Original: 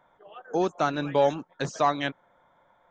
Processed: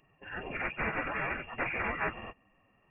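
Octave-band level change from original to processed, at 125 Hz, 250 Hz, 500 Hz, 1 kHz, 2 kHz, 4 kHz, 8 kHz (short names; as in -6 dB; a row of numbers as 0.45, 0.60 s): -8.0 dB, -11.0 dB, -14.0 dB, -9.5 dB, +3.5 dB, under -10 dB, n/a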